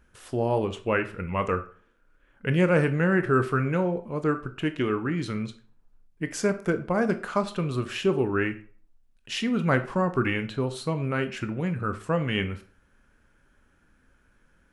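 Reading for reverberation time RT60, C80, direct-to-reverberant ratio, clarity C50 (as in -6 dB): 0.45 s, 18.5 dB, 9.0 dB, 14.0 dB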